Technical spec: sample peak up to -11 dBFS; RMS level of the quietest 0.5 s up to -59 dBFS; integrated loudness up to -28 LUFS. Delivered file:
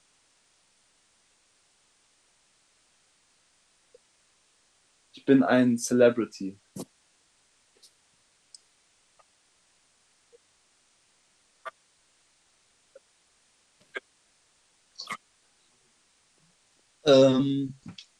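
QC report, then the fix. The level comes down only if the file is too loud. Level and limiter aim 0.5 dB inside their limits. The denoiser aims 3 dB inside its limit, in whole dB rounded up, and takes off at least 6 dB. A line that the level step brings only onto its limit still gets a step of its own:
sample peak -7.5 dBFS: fail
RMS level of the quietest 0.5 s -67 dBFS: pass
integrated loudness -24.0 LUFS: fail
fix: trim -4.5 dB

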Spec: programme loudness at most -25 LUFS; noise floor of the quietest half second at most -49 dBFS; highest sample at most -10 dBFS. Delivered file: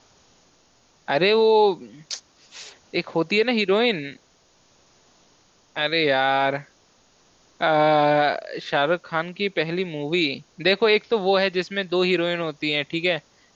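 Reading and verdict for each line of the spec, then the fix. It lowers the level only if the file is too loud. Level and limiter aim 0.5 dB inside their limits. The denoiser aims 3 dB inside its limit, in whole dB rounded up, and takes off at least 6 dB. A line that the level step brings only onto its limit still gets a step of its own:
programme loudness -21.5 LUFS: fail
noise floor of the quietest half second -60 dBFS: pass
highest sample -6.0 dBFS: fail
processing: trim -4 dB; peak limiter -10.5 dBFS

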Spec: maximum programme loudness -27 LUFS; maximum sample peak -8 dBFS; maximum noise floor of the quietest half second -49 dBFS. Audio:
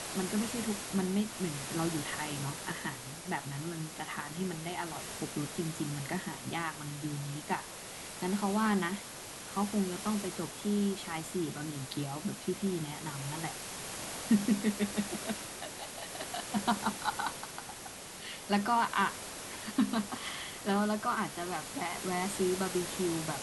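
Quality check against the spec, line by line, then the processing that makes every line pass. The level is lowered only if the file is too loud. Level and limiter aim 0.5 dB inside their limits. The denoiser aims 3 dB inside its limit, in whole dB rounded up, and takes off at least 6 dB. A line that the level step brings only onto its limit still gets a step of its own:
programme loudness -35.0 LUFS: pass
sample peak -15.5 dBFS: pass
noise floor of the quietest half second -46 dBFS: fail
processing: noise reduction 6 dB, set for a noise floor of -46 dBFS

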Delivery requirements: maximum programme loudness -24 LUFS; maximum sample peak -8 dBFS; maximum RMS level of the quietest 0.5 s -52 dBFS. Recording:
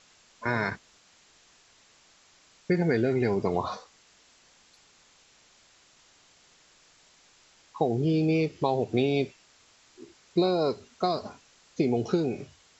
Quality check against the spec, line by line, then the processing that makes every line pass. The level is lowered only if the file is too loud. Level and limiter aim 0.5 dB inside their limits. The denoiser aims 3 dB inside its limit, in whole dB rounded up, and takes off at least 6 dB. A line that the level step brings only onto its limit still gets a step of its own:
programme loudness -28.0 LUFS: pass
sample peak -12.0 dBFS: pass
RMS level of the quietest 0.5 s -60 dBFS: pass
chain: none needed

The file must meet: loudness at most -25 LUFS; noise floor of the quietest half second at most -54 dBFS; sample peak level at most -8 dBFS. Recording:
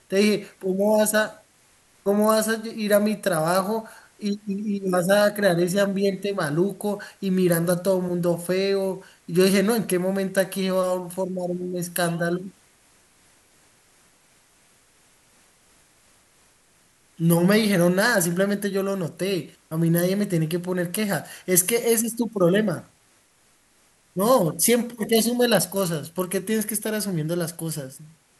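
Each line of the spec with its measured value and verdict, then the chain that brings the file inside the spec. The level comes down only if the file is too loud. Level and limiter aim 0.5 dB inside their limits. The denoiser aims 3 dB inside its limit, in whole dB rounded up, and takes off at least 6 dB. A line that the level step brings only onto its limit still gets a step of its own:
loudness -23.0 LUFS: fail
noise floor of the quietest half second -61 dBFS: pass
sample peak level -3.0 dBFS: fail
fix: trim -2.5 dB; peak limiter -8.5 dBFS

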